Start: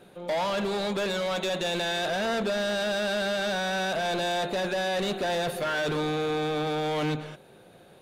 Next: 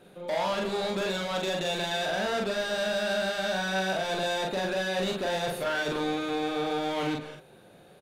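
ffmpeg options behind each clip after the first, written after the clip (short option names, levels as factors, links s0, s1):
-filter_complex "[0:a]asplit=2[s0][s1];[s1]adelay=42,volume=0.794[s2];[s0][s2]amix=inputs=2:normalize=0,volume=0.708"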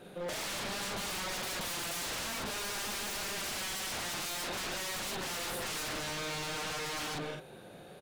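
-af "aeval=exprs='0.0168*(abs(mod(val(0)/0.0168+3,4)-2)-1)':c=same,volume=1.41"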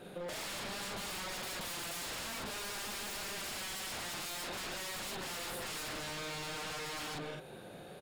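-af "bandreject=f=6000:w=20,acompressor=threshold=0.01:ratio=6,volume=1.12"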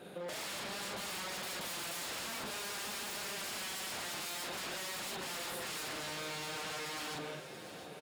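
-af "highpass=f=140:p=1,aecho=1:1:683|1366|2049|2732|3415:0.251|0.128|0.0653|0.0333|0.017"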